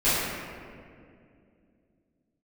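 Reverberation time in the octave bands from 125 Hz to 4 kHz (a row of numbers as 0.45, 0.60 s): 3.2, 3.5, 2.7, 1.9, 1.9, 1.2 s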